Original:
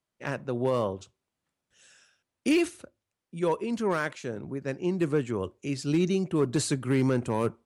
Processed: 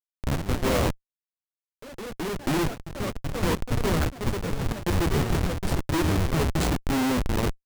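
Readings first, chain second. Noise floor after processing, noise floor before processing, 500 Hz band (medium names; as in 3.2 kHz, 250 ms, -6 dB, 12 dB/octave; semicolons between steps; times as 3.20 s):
under -85 dBFS, under -85 dBFS, -1.0 dB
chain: octave divider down 1 oct, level -2 dB; Chebyshev shaper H 3 -36 dB, 6 -25 dB, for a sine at -13.5 dBFS; hum notches 60/120/180/240/300/360/420 Hz; doubling 12 ms -6.5 dB; Schmitt trigger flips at -25.5 dBFS; ever faster or slower copies 118 ms, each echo +3 st, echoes 3, each echo -6 dB; trim +5 dB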